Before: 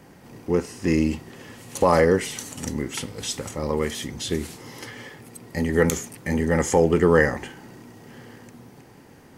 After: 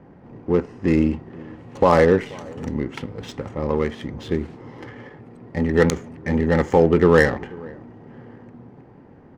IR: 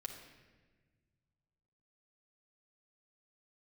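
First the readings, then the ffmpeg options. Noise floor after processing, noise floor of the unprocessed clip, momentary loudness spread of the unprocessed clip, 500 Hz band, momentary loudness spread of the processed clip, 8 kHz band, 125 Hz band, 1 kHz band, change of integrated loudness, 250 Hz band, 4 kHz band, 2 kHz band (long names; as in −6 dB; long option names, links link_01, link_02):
−47 dBFS, −49 dBFS, 20 LU, +3.0 dB, 23 LU, −11.0 dB, +3.0 dB, +2.5 dB, +3.0 dB, +3.0 dB, −4.5 dB, +1.5 dB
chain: -filter_complex "[0:a]asplit=2[link_01][link_02];[link_02]adelay=484,volume=-22dB,highshelf=frequency=4000:gain=-10.9[link_03];[link_01][link_03]amix=inputs=2:normalize=0,adynamicsmooth=sensitivity=1.5:basefreq=1300,volume=3dB"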